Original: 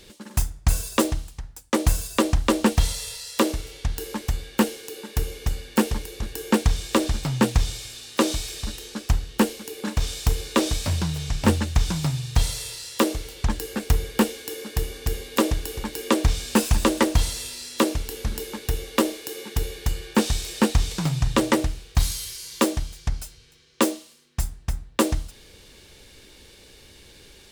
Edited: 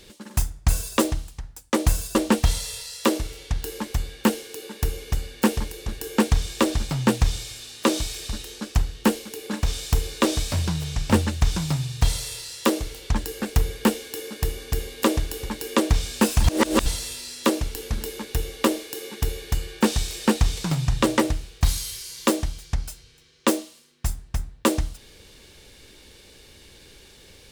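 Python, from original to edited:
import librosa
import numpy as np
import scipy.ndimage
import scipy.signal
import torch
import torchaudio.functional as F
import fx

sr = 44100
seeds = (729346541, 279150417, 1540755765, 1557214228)

y = fx.edit(x, sr, fx.cut(start_s=2.15, length_s=0.34),
    fx.reverse_span(start_s=16.78, length_s=0.42), tone=tone)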